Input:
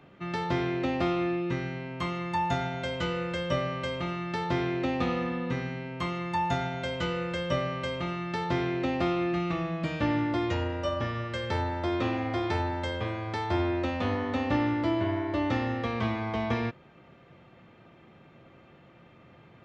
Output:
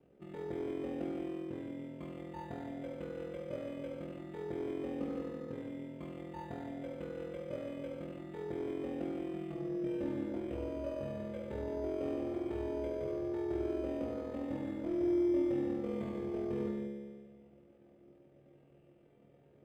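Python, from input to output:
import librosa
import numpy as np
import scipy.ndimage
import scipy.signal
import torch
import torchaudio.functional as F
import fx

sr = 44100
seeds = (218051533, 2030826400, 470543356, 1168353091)

p1 = fx.curve_eq(x, sr, hz=(140.0, 480.0, 1100.0, 2200.0), db=(0, 9, -9, -4))
p2 = np.clip(p1, -10.0 ** (-28.5 / 20.0), 10.0 ** (-28.5 / 20.0))
p3 = p1 + (p2 * librosa.db_to_amplitude(-3.0))
p4 = p3 * np.sin(2.0 * np.pi * 21.0 * np.arange(len(p3)) / sr)
p5 = fx.comb_fb(p4, sr, f0_hz=70.0, decay_s=1.7, harmonics='all', damping=0.0, mix_pct=90)
p6 = p5 + fx.echo_single(p5, sr, ms=171, db=-8.0, dry=0)
y = np.interp(np.arange(len(p6)), np.arange(len(p6))[::8], p6[::8])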